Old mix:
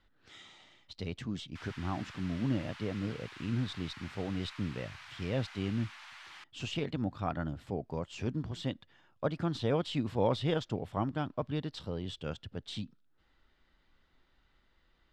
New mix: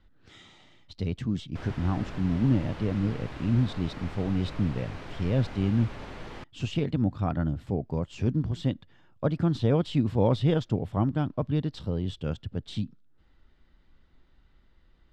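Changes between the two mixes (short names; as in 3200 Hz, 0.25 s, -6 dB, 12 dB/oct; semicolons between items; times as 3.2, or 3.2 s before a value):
speech: add low shelf 390 Hz +11 dB; background: remove Bessel high-pass 1600 Hz, order 8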